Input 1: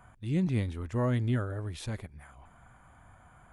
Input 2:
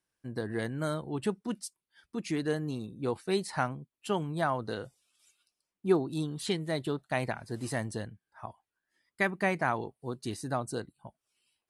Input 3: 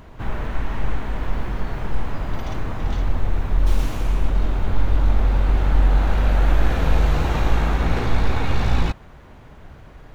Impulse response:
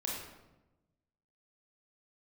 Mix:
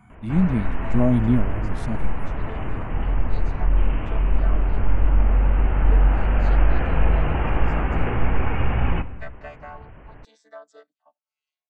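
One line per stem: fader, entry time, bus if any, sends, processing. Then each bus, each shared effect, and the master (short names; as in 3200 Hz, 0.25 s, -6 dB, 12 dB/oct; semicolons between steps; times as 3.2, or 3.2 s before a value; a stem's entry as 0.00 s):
-0.5 dB, 0.00 s, no send, random-step tremolo, depth 65%; small resonant body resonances 210/670/2200 Hz, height 16 dB, ringing for 25 ms; stepped notch 3 Hz 610–2300 Hz
+1.5 dB, 0.00 s, no send, chord vocoder bare fifth, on D3; HPF 550 Hz 24 dB/oct; endless flanger 4.9 ms -0.62 Hz
-2.5 dB, 0.10 s, send -14.5 dB, steep low-pass 3000 Hz 96 dB/oct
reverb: on, RT60 1.0 s, pre-delay 24 ms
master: dry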